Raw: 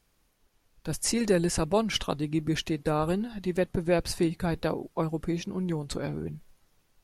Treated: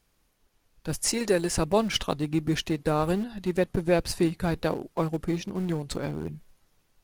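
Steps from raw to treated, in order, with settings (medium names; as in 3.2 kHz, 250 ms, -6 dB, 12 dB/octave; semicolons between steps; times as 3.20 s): 1.08–1.51 s: tone controls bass -8 dB, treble +1 dB; in parallel at -12 dB: small samples zeroed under -27.5 dBFS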